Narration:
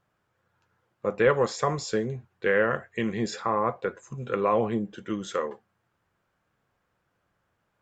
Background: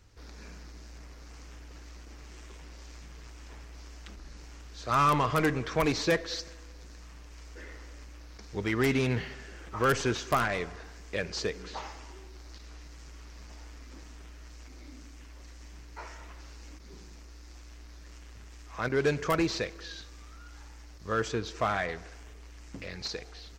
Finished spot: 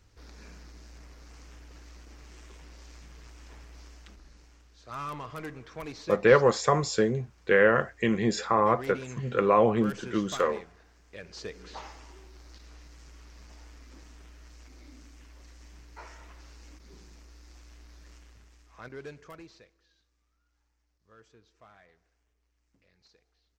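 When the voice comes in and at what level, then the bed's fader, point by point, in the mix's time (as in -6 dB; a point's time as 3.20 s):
5.05 s, +2.5 dB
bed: 3.83 s -2 dB
4.82 s -13 dB
11.11 s -13 dB
11.74 s -3 dB
18.11 s -3 dB
19.87 s -27.5 dB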